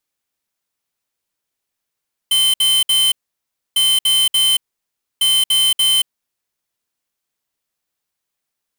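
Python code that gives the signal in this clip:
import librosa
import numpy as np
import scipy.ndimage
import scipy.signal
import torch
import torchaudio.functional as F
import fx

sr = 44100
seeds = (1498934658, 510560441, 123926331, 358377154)

y = fx.beep_pattern(sr, wave='square', hz=3080.0, on_s=0.23, off_s=0.06, beeps=3, pause_s=0.64, groups=3, level_db=-14.0)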